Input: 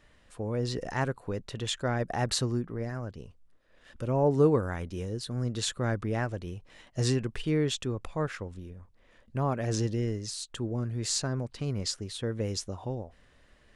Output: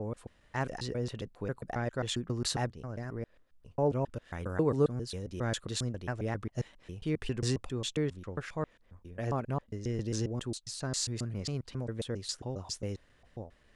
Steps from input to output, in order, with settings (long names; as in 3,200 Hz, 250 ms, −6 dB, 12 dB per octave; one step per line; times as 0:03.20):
slices reordered back to front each 135 ms, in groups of 4
level −3.5 dB